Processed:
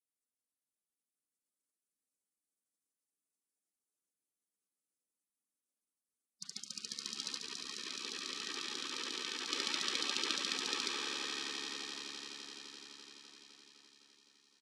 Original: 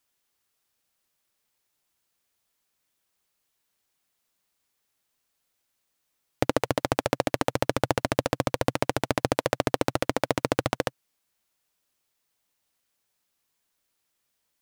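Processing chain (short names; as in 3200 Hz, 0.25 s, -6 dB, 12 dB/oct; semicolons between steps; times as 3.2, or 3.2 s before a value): limiter -7 dBFS, peak gain reduction 3.5 dB; elliptic high-pass 180 Hz, stop band 40 dB; three-band isolator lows -21 dB, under 590 Hz, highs -20 dB, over 3500 Hz; notch 1300 Hz, Q 9.2; swelling echo 85 ms, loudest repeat 8, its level -11 dB; 7.38–9.52 level quantiser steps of 18 dB; Bessel low-pass 6500 Hz, order 8; high shelf 2300 Hz +11 dB; notches 60/120/180/240/300/360/420/480/540/600 Hz; comb 3 ms, depth 34%; Schroeder reverb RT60 0.5 s, combs from 29 ms, DRR 15 dB; spectral gate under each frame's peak -25 dB weak; gain +8 dB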